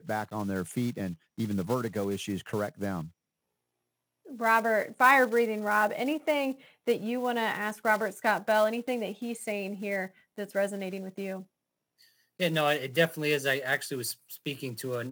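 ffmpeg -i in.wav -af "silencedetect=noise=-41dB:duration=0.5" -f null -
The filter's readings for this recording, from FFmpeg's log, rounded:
silence_start: 3.08
silence_end: 4.29 | silence_duration: 1.21
silence_start: 11.43
silence_end: 12.40 | silence_duration: 0.97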